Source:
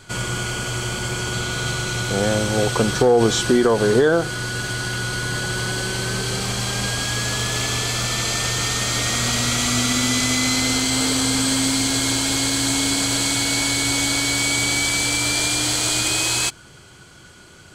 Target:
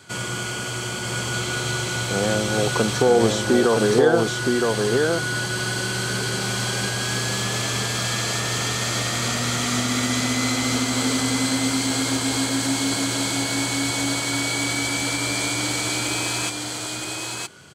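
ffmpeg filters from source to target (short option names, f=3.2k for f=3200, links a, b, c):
-filter_complex "[0:a]acrossover=split=830|1800[a][b][c];[c]alimiter=limit=-17dB:level=0:latency=1:release=326[d];[a][b][d]amix=inputs=3:normalize=0,highpass=120,aecho=1:1:968:0.708,volume=-2dB"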